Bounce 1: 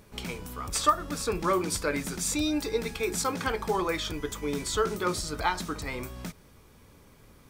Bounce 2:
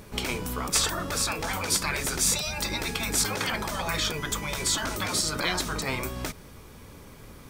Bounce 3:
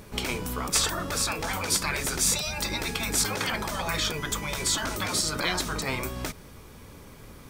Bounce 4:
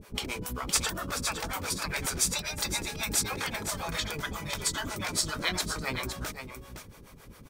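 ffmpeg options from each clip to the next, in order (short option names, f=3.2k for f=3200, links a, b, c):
-af "afftfilt=real='re*lt(hypot(re,im),0.0891)':imag='im*lt(hypot(re,im),0.0891)':win_size=1024:overlap=0.75,volume=8.5dB"
-af anull
-filter_complex "[0:a]acrossover=split=450[a][b];[a]aeval=exprs='val(0)*(1-1/2+1/2*cos(2*PI*7.4*n/s))':c=same[c];[b]aeval=exprs='val(0)*(1-1/2-1/2*cos(2*PI*7.4*n/s))':c=same[d];[c][d]amix=inputs=2:normalize=0,asplit=2[e][f];[f]aecho=0:1:513:0.376[g];[e][g]amix=inputs=2:normalize=0"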